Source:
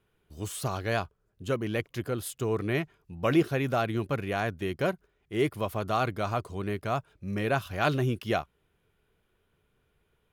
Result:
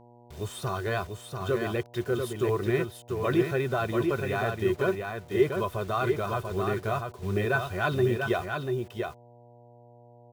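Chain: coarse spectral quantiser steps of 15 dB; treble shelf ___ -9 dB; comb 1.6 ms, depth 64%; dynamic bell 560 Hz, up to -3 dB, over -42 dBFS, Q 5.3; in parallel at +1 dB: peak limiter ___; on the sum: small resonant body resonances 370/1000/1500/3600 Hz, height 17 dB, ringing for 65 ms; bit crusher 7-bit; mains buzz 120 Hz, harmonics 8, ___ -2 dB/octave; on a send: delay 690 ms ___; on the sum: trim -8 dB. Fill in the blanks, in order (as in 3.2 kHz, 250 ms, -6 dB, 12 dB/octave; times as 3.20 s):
6.9 kHz, -24 dBFS, -46 dBFS, -5 dB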